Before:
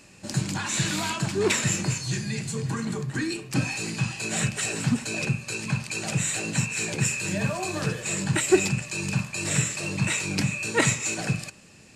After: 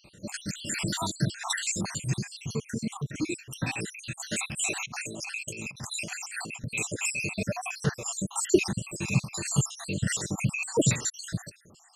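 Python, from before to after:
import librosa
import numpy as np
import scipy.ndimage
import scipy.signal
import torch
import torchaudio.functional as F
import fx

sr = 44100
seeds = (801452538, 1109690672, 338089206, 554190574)

y = fx.spec_dropout(x, sr, seeds[0], share_pct=69)
y = fx.over_compress(y, sr, threshold_db=-40.0, ratio=-1.0, at=(4.76, 6.64))
y = y * librosa.db_to_amplitude(1.5)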